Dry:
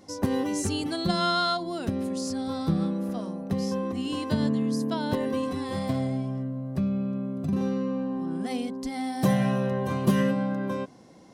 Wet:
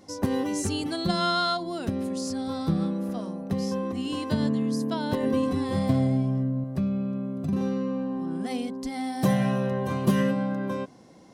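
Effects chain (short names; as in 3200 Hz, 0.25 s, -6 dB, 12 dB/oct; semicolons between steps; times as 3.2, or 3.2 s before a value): 5.23–6.64 low shelf 410 Hz +6.5 dB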